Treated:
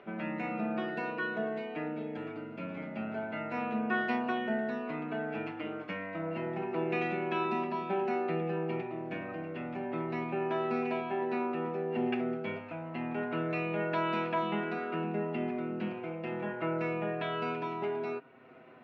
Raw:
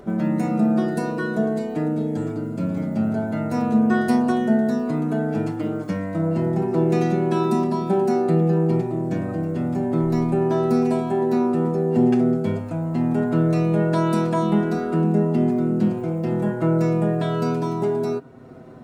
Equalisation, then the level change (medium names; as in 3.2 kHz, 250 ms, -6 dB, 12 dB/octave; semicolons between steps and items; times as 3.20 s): high-pass 760 Hz 6 dB/octave; four-pole ladder low-pass 2.9 kHz, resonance 60%; +5.0 dB